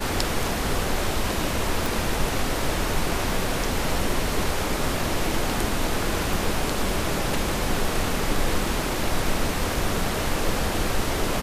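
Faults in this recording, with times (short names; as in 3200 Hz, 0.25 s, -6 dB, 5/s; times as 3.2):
1.86 pop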